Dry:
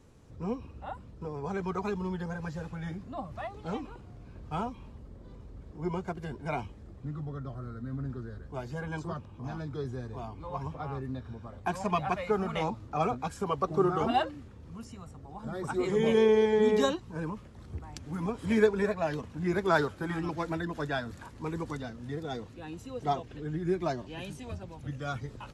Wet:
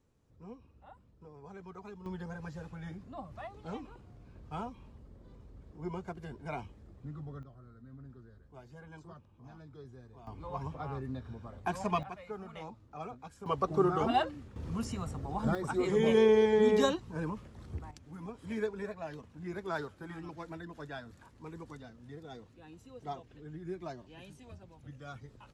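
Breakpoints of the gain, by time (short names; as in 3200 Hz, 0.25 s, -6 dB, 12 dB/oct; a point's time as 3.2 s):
-15 dB
from 2.06 s -6 dB
from 7.43 s -14.5 dB
from 10.27 s -2.5 dB
from 12.03 s -14 dB
from 13.46 s -1.5 dB
from 14.56 s +8 dB
from 15.55 s -1 dB
from 17.91 s -11 dB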